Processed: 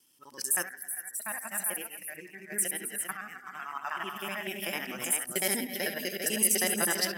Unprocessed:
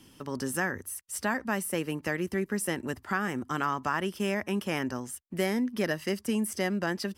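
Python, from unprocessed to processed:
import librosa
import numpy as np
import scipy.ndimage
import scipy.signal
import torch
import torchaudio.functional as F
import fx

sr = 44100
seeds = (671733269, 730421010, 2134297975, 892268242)

y = fx.local_reverse(x, sr, ms=63.0)
y = fx.riaa(y, sr, side='recording')
y = fx.echo_multitap(y, sr, ms=(69, 167, 266, 367, 398), db=(-11.0, -11.0, -9.5, -18.0, -5.5))
y = fx.tremolo_random(y, sr, seeds[0], hz=1.6, depth_pct=75)
y = fx.noise_reduce_blind(y, sr, reduce_db=13)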